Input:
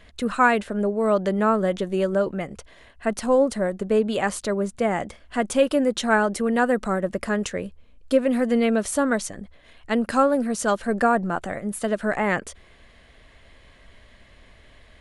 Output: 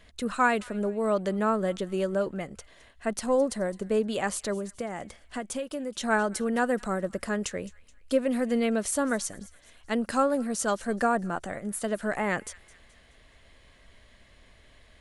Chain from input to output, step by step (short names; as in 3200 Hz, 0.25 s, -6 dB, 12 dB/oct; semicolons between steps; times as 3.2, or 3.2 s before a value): tone controls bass 0 dB, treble +5 dB; 4.57–6.01 compressor 6:1, threshold -25 dBFS, peak gain reduction 11.5 dB; thin delay 0.213 s, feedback 44%, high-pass 1800 Hz, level -19 dB; gain -5.5 dB